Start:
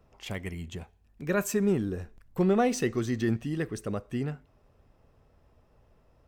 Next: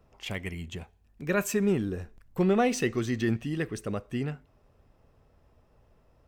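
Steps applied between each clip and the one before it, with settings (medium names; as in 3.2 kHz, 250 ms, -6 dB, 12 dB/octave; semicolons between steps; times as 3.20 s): dynamic bell 2.6 kHz, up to +5 dB, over -52 dBFS, Q 1.4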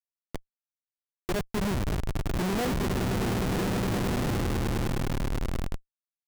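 echo with a slow build-up 103 ms, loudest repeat 8, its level -9 dB; resampled via 8 kHz; Schmitt trigger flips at -24 dBFS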